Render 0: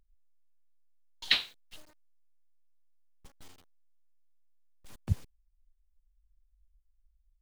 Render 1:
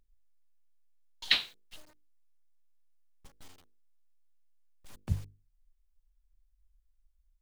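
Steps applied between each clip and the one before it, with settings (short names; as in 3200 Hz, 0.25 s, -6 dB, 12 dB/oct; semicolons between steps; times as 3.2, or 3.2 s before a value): notches 50/100/150/200/250/300/350/400/450/500 Hz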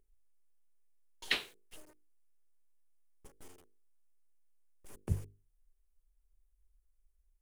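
fifteen-band EQ 400 Hz +12 dB, 4000 Hz -9 dB, 10000 Hz +7 dB; gain -2.5 dB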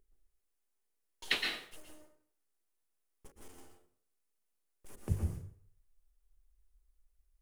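plate-style reverb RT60 0.56 s, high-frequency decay 0.75×, pre-delay 0.105 s, DRR 1.5 dB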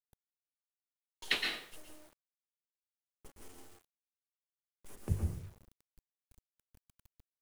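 bit-crush 10-bit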